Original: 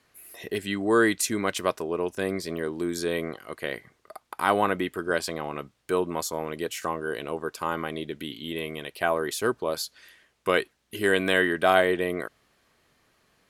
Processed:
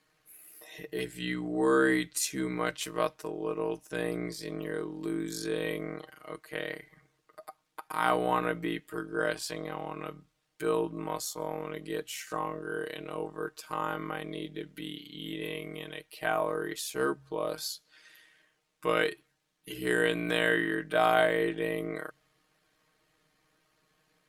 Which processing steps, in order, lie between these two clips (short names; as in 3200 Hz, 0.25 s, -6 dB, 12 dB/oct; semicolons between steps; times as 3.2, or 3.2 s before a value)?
notches 60/120 Hz; granular stretch 1.8×, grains 29 ms; gain -4 dB